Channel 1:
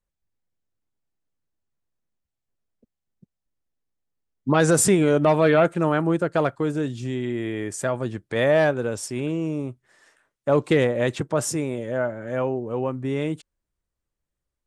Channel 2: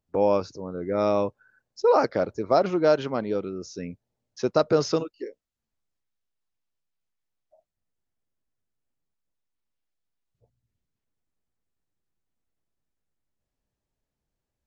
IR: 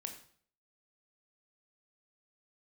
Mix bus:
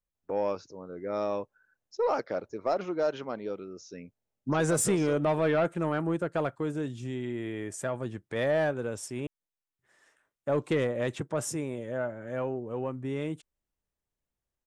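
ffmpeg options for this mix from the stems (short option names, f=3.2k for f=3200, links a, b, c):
-filter_complex "[0:a]volume=-7dB,asplit=3[a][b][c];[a]atrim=end=9.27,asetpts=PTS-STARTPTS,afade=t=out:st=9.266:d=0.004:c=hsin[d];[b]atrim=start=9.27:end=9.79,asetpts=PTS-STARTPTS,volume=0[e];[c]atrim=start=9.79,asetpts=PTS-STARTPTS,afade=t=in:d=0.004:c=hsin[f];[d][e][f]concat=n=3:v=0:a=1,asplit=2[g][h];[1:a]lowshelf=f=220:g=-8,adelay=150,volume=-6dB[i];[h]apad=whole_len=653290[j];[i][j]sidechaincompress=threshold=-29dB:ratio=8:attack=16:release=390[k];[g][k]amix=inputs=2:normalize=0,equalizer=f=4.5k:t=o:w=0.33:g=-4.5,asoftclip=type=tanh:threshold=-17dB"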